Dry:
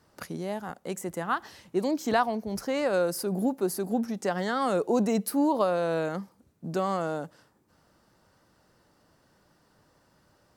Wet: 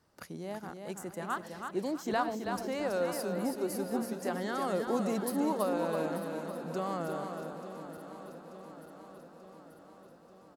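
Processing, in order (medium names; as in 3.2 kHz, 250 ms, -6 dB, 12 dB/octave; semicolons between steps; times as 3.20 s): backward echo that repeats 443 ms, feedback 78%, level -12 dB; on a send: feedback delay 327 ms, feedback 30%, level -6 dB; on the sum: trim -7 dB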